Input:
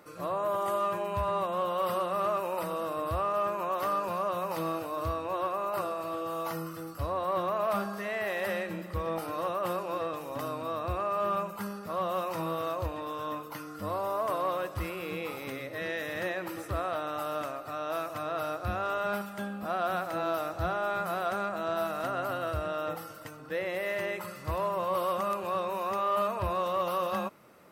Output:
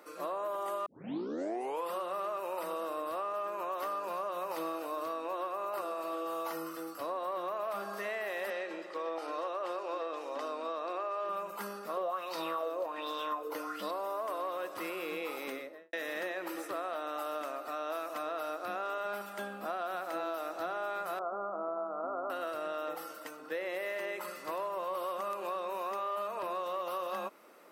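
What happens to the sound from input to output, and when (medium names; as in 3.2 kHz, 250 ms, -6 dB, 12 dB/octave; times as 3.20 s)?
0.86 s: tape start 1.07 s
8.50–11.29 s: Chebyshev band-pass 370–5700 Hz
11.97–13.91 s: sweeping bell 1.3 Hz 410–4400 Hz +15 dB
15.46–15.93 s: studio fade out
21.19–22.30 s: elliptic low-pass 1.3 kHz
whole clip: high-pass 270 Hz 24 dB/octave; compression, threshold -33 dBFS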